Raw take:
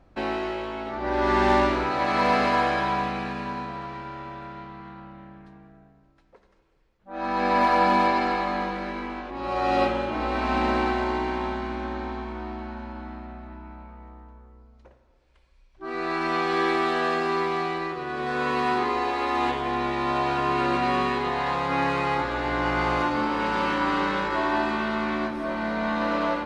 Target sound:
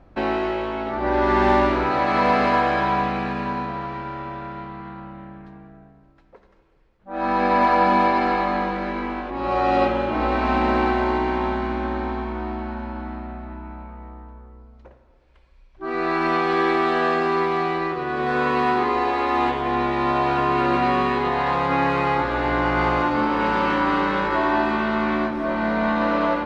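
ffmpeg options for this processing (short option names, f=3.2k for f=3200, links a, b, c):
-filter_complex "[0:a]lowpass=f=2.7k:p=1,asplit=2[a][b];[b]alimiter=limit=-18.5dB:level=0:latency=1:release=451,volume=0dB[c];[a][c]amix=inputs=2:normalize=0"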